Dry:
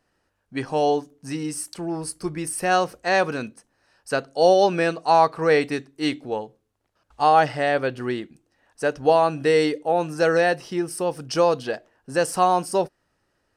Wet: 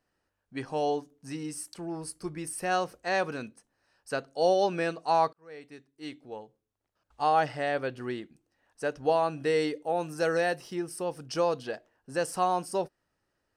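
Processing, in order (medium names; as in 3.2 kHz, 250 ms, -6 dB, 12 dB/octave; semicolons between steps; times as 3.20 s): 5.33–7.30 s: fade in; 9.83–10.75 s: treble shelf 10 kHz +11.5 dB; trim -8 dB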